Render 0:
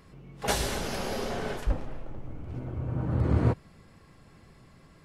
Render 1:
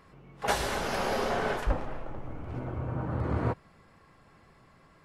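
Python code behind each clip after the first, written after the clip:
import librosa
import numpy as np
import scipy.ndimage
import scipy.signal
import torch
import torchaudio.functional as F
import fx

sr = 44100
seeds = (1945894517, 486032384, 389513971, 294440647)

y = fx.rider(x, sr, range_db=3, speed_s=0.5)
y = fx.peak_eq(y, sr, hz=1100.0, db=9.0, octaves=2.6)
y = y * 10.0 ** (-4.0 / 20.0)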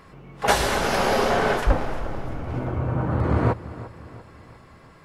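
y = fx.echo_feedback(x, sr, ms=346, feedback_pct=50, wet_db=-16.0)
y = y * 10.0 ** (8.5 / 20.0)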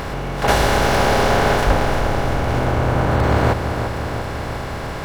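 y = fx.bin_compress(x, sr, power=0.4)
y = np.interp(np.arange(len(y)), np.arange(len(y))[::2], y[::2])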